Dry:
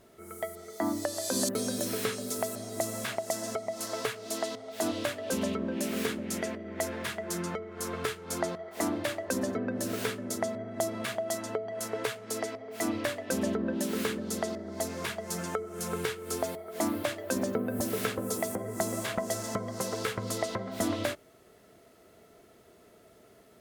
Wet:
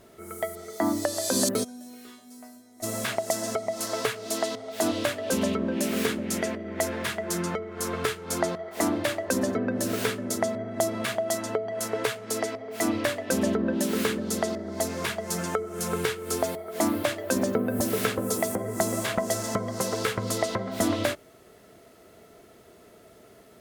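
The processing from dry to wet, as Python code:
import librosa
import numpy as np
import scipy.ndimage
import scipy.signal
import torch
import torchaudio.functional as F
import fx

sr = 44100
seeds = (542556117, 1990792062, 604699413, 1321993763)

y = fx.resonator_bank(x, sr, root=59, chord='major', decay_s=0.49, at=(1.63, 2.82), fade=0.02)
y = y * librosa.db_to_amplitude(5.0)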